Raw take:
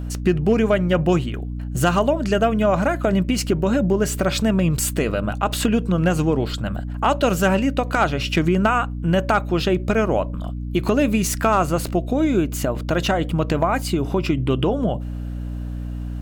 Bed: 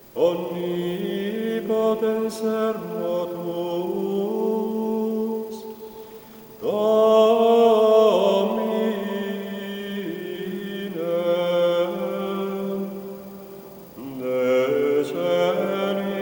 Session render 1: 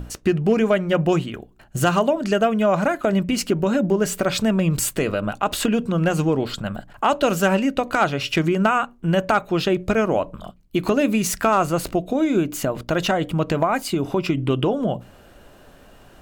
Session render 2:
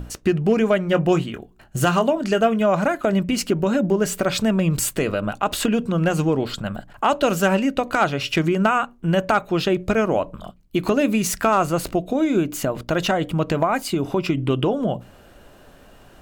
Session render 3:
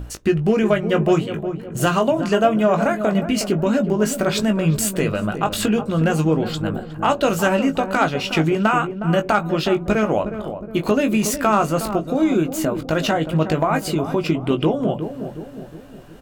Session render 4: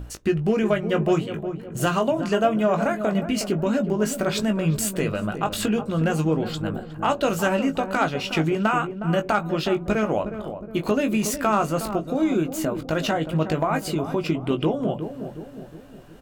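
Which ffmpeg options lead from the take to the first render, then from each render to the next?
ffmpeg -i in.wav -af "bandreject=frequency=60:width_type=h:width=6,bandreject=frequency=120:width_type=h:width=6,bandreject=frequency=180:width_type=h:width=6,bandreject=frequency=240:width_type=h:width=6,bandreject=frequency=300:width_type=h:width=6" out.wav
ffmpeg -i in.wav -filter_complex "[0:a]asettb=1/sr,asplit=3[link_01][link_02][link_03];[link_01]atrim=end=0.844[link_04];[link_02]atrim=start=0.84:end=2.61,asetpts=PTS-STARTPTS,afade=type=in:duration=0.004:curve=qsin,afade=type=out:start_time=1.766:duration=0.004:curve=qsin,asplit=2[link_05][link_06];[link_06]adelay=22,volume=-12dB[link_07];[link_05][link_07]amix=inputs=2:normalize=0,atrim=end_sample=78057[link_08];[link_03]atrim=start=2.606[link_09];[link_04][link_08]acrossfade=duration=0.004:curve1=hsin:curve2=qsin[link_10];[link_10][link_09]acrossfade=duration=0.004:curve1=qsin:curve2=hsin" out.wav
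ffmpeg -i in.wav -filter_complex "[0:a]asplit=2[link_01][link_02];[link_02]adelay=19,volume=-7.5dB[link_03];[link_01][link_03]amix=inputs=2:normalize=0,asplit=2[link_04][link_05];[link_05]adelay=363,lowpass=frequency=870:poles=1,volume=-8.5dB,asplit=2[link_06][link_07];[link_07]adelay=363,lowpass=frequency=870:poles=1,volume=0.53,asplit=2[link_08][link_09];[link_09]adelay=363,lowpass=frequency=870:poles=1,volume=0.53,asplit=2[link_10][link_11];[link_11]adelay=363,lowpass=frequency=870:poles=1,volume=0.53,asplit=2[link_12][link_13];[link_13]adelay=363,lowpass=frequency=870:poles=1,volume=0.53,asplit=2[link_14][link_15];[link_15]adelay=363,lowpass=frequency=870:poles=1,volume=0.53[link_16];[link_06][link_08][link_10][link_12][link_14][link_16]amix=inputs=6:normalize=0[link_17];[link_04][link_17]amix=inputs=2:normalize=0" out.wav
ffmpeg -i in.wav -af "volume=-4dB" out.wav

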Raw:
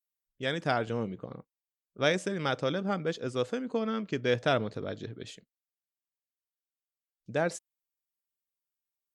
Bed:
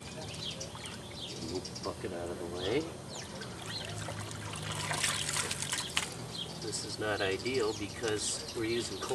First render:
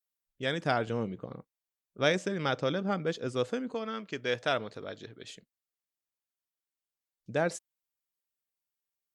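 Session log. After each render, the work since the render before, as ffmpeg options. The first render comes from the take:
ffmpeg -i in.wav -filter_complex "[0:a]asettb=1/sr,asplit=3[link_01][link_02][link_03];[link_01]atrim=end=2.184[link_04];[link_02]atrim=start=2.18:end=3,asetpts=PTS-STARTPTS,afade=type=in:duration=0.004:curve=qsin,afade=type=out:start_time=0.816:duration=0.004:curve=qsin,equalizer=frequency=9800:width=3.2:gain=-13.5[link_05];[link_03]atrim=start=2.996[link_06];[link_04][link_05]acrossfade=duration=0.004:curve1=hsin:curve2=qsin[link_07];[link_07][link_06]acrossfade=duration=0.004:curve1=qsin:curve2=hsin,asettb=1/sr,asplit=3[link_08][link_09][link_10];[link_08]atrim=end=3.744[link_11];[link_09]atrim=start=3.74:end=5.3,asetpts=PTS-STARTPTS,afade=type=in:duration=0.004:curve=qsin,afade=type=out:start_time=1.556:duration=0.004:curve=qsin,lowshelf=frequency=400:gain=-10.5[link_12];[link_10]atrim=start=5.296[link_13];[link_11][link_12]acrossfade=duration=0.004:curve1=hsin:curve2=qsin[link_14];[link_14][link_13]acrossfade=duration=0.004:curve1=qsin:curve2=hsin" out.wav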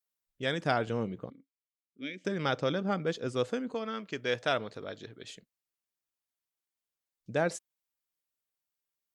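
ffmpeg -i in.wav -filter_complex "[0:a]asettb=1/sr,asplit=3[link_01][link_02][link_03];[link_01]atrim=end=1.304[link_04];[link_02]atrim=start=1.3:end=2.25,asetpts=PTS-STARTPTS,afade=type=in:duration=0.004:curve=qsin,afade=type=out:start_time=0.946:duration=0.004:curve=qsin,asplit=3[link_05][link_06][link_07];[link_05]bandpass=frequency=270:width_type=q:width=8,volume=0dB[link_08];[link_06]bandpass=frequency=2290:width_type=q:width=8,volume=-6dB[link_09];[link_07]bandpass=frequency=3010:width_type=q:width=8,volume=-9dB[link_10];[link_08][link_09][link_10]amix=inputs=3:normalize=0[link_11];[link_03]atrim=start=2.246[link_12];[link_04][link_11]acrossfade=duration=0.004:curve1=hsin:curve2=qsin[link_13];[link_13][link_12]acrossfade=duration=0.004:curve1=qsin:curve2=hsin" out.wav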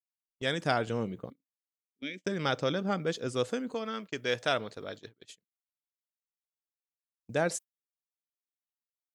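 ffmpeg -i in.wav -af "agate=range=-26dB:threshold=-44dB:ratio=16:detection=peak,highshelf=frequency=6700:gain=10.5" out.wav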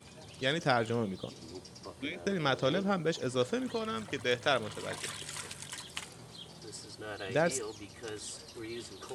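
ffmpeg -i in.wav -i bed.wav -filter_complex "[1:a]volume=-8.5dB[link_01];[0:a][link_01]amix=inputs=2:normalize=0" out.wav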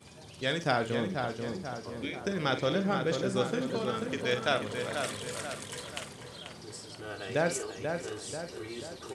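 ffmpeg -i in.wav -filter_complex "[0:a]asplit=2[link_01][link_02];[link_02]adelay=47,volume=-10dB[link_03];[link_01][link_03]amix=inputs=2:normalize=0,asplit=2[link_04][link_05];[link_05]adelay=487,lowpass=frequency=2600:poles=1,volume=-5dB,asplit=2[link_06][link_07];[link_07]adelay=487,lowpass=frequency=2600:poles=1,volume=0.53,asplit=2[link_08][link_09];[link_09]adelay=487,lowpass=frequency=2600:poles=1,volume=0.53,asplit=2[link_10][link_11];[link_11]adelay=487,lowpass=frequency=2600:poles=1,volume=0.53,asplit=2[link_12][link_13];[link_13]adelay=487,lowpass=frequency=2600:poles=1,volume=0.53,asplit=2[link_14][link_15];[link_15]adelay=487,lowpass=frequency=2600:poles=1,volume=0.53,asplit=2[link_16][link_17];[link_17]adelay=487,lowpass=frequency=2600:poles=1,volume=0.53[link_18];[link_04][link_06][link_08][link_10][link_12][link_14][link_16][link_18]amix=inputs=8:normalize=0" out.wav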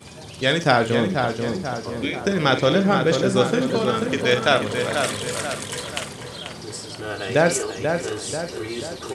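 ffmpeg -i in.wav -af "volume=11dB,alimiter=limit=-2dB:level=0:latency=1" out.wav

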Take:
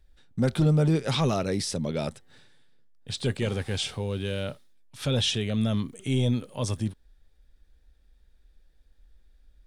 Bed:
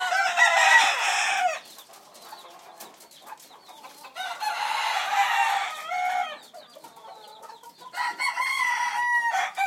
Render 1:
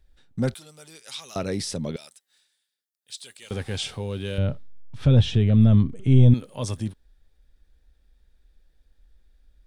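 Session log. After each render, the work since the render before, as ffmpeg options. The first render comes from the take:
ffmpeg -i in.wav -filter_complex "[0:a]asettb=1/sr,asplit=3[link_01][link_02][link_03];[link_01]atrim=end=0.544[link_04];[link_02]atrim=start=0.54:end=1.36,asetpts=PTS-STARTPTS,afade=type=in:duration=0.004:curve=qsin,afade=type=out:start_time=0.816:duration=0.004:curve=qsin,aderivative[link_05];[link_03]atrim=start=1.356[link_06];[link_04][link_05]acrossfade=duration=0.004:curve1=hsin:curve2=qsin[link_07];[link_07][link_06]acrossfade=duration=0.004:curve1=qsin:curve2=hsin,asettb=1/sr,asplit=3[link_08][link_09][link_10];[link_08]atrim=end=1.964[link_11];[link_09]atrim=start=1.96:end=3.51,asetpts=PTS-STARTPTS,afade=type=in:duration=0.004:curve=qsin,afade=type=out:start_time=1.546:duration=0.004:curve=qsin,aderivative[link_12];[link_10]atrim=start=3.506[link_13];[link_11][link_12]acrossfade=duration=0.004:curve1=hsin:curve2=qsin[link_14];[link_14][link_13]acrossfade=duration=0.004:curve1=qsin:curve2=hsin,asettb=1/sr,asplit=3[link_15][link_16][link_17];[link_15]atrim=end=4.384[link_18];[link_16]atrim=start=4.38:end=6.34,asetpts=PTS-STARTPTS,afade=type=in:duration=0.004:curve=qsin,afade=type=out:start_time=1.956:duration=0.004:curve=qsin,aemphasis=mode=reproduction:type=riaa[link_19];[link_17]atrim=start=6.336[link_20];[link_18][link_19]acrossfade=duration=0.004:curve1=hsin:curve2=qsin[link_21];[link_21][link_20]acrossfade=duration=0.004:curve1=qsin:curve2=hsin" out.wav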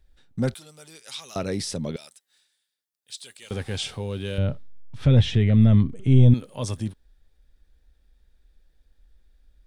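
ffmpeg -i in.wav -filter_complex "[0:a]asettb=1/sr,asplit=3[link_01][link_02][link_03];[link_01]atrim=end=5.054[link_04];[link_02]atrim=start=5.05:end=5.81,asetpts=PTS-STARTPTS,afade=type=in:duration=0.004:curve=qsin,afade=type=out:start_time=0.756:duration=0.004:curve=qsin,equalizer=frequency=2000:width=4.8:gain=10.5[link_05];[link_03]atrim=start=5.806[link_06];[link_04][link_05]acrossfade=duration=0.004:curve1=hsin:curve2=qsin[link_07];[link_07][link_06]acrossfade=duration=0.004:curve1=qsin:curve2=hsin" out.wav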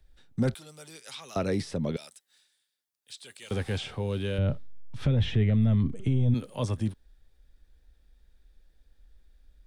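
ffmpeg -i in.wav -filter_complex "[0:a]acrossover=split=170|520|2700[link_01][link_02][link_03][link_04];[link_04]acompressor=threshold=-45dB:ratio=6[link_05];[link_01][link_02][link_03][link_05]amix=inputs=4:normalize=0,alimiter=limit=-17dB:level=0:latency=1:release=23" out.wav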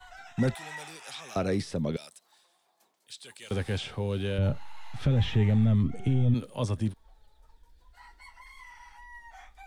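ffmpeg -i in.wav -i bed.wav -filter_complex "[1:a]volume=-25dB[link_01];[0:a][link_01]amix=inputs=2:normalize=0" out.wav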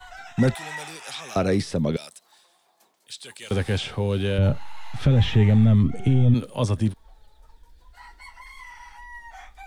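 ffmpeg -i in.wav -af "volume=6.5dB" out.wav

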